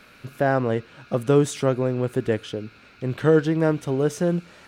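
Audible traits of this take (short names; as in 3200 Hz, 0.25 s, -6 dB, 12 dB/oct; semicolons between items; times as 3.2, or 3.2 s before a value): noise floor -51 dBFS; spectral tilt -6.0 dB/oct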